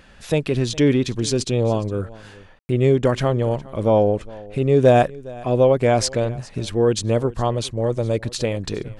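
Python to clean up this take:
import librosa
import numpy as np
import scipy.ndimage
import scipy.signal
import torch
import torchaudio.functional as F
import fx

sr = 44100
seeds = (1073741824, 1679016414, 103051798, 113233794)

y = fx.fix_declip(x, sr, threshold_db=-4.5)
y = fx.fix_ambience(y, sr, seeds[0], print_start_s=0.0, print_end_s=0.5, start_s=2.59, end_s=2.69)
y = fx.fix_echo_inverse(y, sr, delay_ms=411, level_db=-21.0)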